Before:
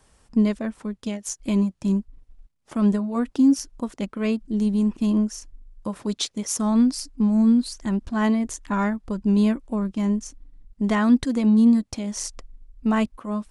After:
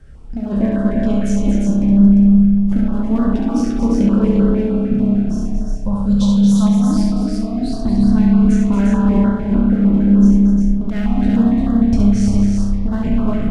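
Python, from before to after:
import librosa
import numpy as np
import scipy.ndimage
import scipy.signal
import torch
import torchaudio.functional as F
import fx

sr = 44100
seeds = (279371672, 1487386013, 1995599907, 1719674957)

y = fx.spec_trails(x, sr, decay_s=0.33)
y = fx.riaa(y, sr, side='playback')
y = fx.fixed_phaser(y, sr, hz=860.0, stages=4, at=(5.21, 6.7))
y = fx.peak_eq(y, sr, hz=1500.0, db=8.0, octaves=0.66)
y = np.clip(10.0 ** (12.0 / 20.0) * y, -1.0, 1.0) / 10.0 ** (12.0 / 20.0)
y = fx.over_compress(y, sr, threshold_db=-18.0, ratio=-0.5)
y = fx.echo_multitap(y, sr, ms=(69, 229, 350, 410), db=(-4.5, -8.0, -4.0, -10.0))
y = fx.rev_spring(y, sr, rt60_s=2.5, pass_ms=(30,), chirp_ms=40, drr_db=-1.0)
y = fx.filter_held_notch(y, sr, hz=6.6, low_hz=970.0, high_hz=2400.0)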